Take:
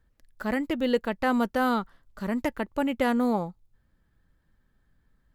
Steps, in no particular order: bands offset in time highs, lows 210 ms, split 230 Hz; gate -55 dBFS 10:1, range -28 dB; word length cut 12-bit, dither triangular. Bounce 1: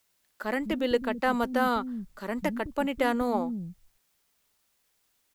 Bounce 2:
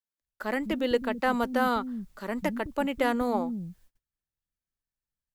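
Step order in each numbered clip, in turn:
gate > bands offset in time > word length cut; bands offset in time > word length cut > gate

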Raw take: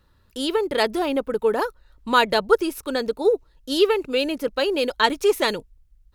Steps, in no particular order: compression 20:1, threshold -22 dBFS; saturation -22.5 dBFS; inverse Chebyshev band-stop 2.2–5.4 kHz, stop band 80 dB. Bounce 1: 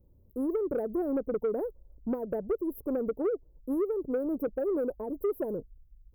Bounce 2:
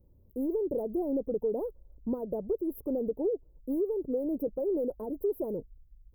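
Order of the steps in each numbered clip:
compression > inverse Chebyshev band-stop > saturation; compression > saturation > inverse Chebyshev band-stop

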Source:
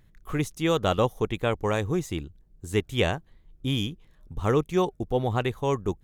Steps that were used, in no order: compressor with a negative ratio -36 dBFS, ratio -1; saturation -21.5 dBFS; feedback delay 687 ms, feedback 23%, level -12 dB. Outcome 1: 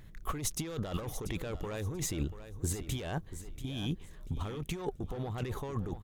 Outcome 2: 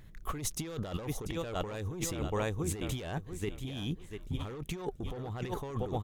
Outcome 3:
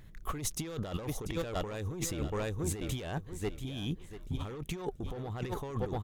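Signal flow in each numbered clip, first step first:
saturation > compressor with a negative ratio > feedback delay; feedback delay > saturation > compressor with a negative ratio; saturation > feedback delay > compressor with a negative ratio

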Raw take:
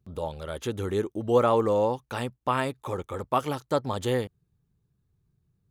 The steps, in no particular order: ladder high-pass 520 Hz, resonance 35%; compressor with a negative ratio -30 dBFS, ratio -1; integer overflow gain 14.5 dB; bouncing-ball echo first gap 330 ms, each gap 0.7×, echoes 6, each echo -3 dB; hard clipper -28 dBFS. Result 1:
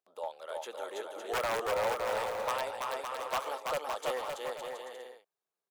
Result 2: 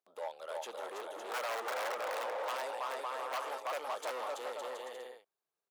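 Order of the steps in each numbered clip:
integer overflow > ladder high-pass > hard clipper > compressor with a negative ratio > bouncing-ball echo; bouncing-ball echo > integer overflow > hard clipper > ladder high-pass > compressor with a negative ratio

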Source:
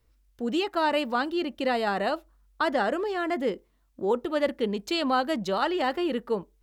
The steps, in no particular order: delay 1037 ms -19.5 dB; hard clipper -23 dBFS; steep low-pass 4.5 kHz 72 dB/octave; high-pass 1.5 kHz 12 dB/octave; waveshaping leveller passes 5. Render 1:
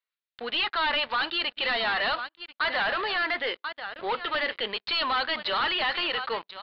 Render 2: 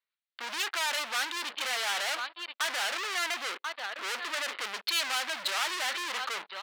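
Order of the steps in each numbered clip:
high-pass > hard clipper > delay > waveshaping leveller > steep low-pass; delay > waveshaping leveller > steep low-pass > hard clipper > high-pass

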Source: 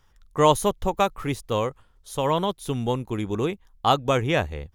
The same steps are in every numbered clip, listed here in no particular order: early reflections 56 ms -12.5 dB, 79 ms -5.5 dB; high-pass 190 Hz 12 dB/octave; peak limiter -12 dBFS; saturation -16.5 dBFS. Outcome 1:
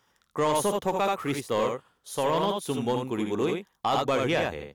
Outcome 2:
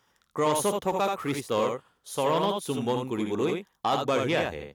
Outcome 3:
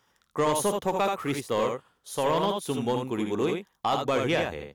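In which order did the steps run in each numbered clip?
early reflections > peak limiter > high-pass > saturation; peak limiter > early reflections > saturation > high-pass; high-pass > peak limiter > early reflections > saturation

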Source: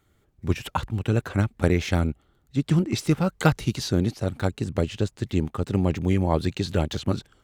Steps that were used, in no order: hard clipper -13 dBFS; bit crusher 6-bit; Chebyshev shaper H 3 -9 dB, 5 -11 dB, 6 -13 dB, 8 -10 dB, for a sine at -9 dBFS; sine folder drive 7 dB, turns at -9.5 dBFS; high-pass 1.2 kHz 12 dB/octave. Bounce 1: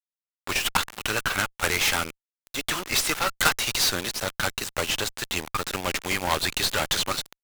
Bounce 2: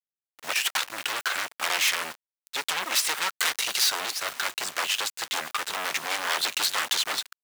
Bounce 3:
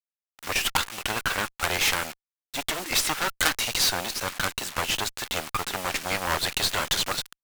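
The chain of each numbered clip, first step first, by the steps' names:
high-pass > hard clipper > sine folder > bit crusher > Chebyshev shaper; sine folder > hard clipper > Chebyshev shaper > bit crusher > high-pass; hard clipper > sine folder > bit crusher > high-pass > Chebyshev shaper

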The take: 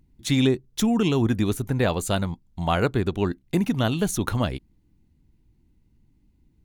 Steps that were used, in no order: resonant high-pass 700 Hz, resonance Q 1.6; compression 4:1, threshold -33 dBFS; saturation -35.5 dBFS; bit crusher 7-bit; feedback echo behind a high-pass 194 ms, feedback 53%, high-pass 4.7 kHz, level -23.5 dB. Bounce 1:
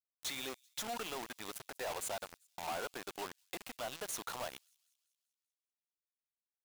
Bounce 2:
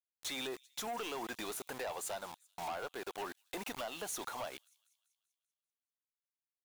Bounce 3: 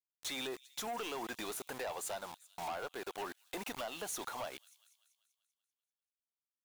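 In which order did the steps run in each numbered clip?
compression > resonant high-pass > saturation > bit crusher > feedback echo behind a high-pass; resonant high-pass > bit crusher > compression > feedback echo behind a high-pass > saturation; resonant high-pass > bit crusher > feedback echo behind a high-pass > compression > saturation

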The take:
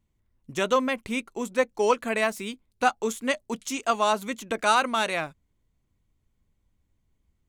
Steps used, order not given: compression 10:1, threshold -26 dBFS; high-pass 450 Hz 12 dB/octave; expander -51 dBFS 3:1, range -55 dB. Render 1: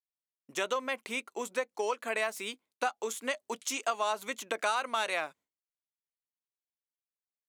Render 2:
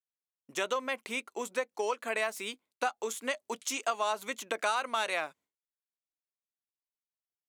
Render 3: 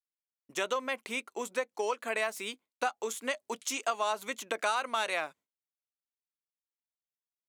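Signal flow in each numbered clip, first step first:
compression > expander > high-pass; expander > compression > high-pass; compression > high-pass > expander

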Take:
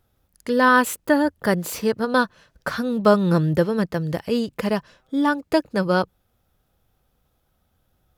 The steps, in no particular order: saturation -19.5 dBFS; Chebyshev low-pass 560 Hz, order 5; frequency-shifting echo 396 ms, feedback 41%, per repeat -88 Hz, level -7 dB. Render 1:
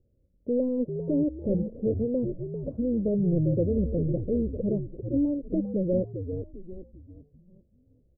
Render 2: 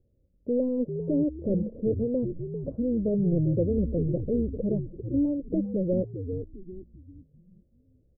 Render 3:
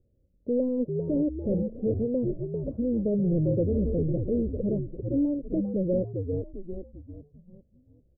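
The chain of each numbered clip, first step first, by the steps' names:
saturation > frequency-shifting echo > Chebyshev low-pass; saturation > Chebyshev low-pass > frequency-shifting echo; frequency-shifting echo > saturation > Chebyshev low-pass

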